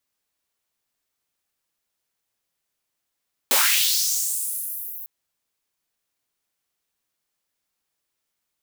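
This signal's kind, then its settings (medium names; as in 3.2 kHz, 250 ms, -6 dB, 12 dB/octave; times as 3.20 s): swept filtered noise white, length 1.55 s highpass, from 190 Hz, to 15 kHz, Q 2.6, linear, gain ramp -19 dB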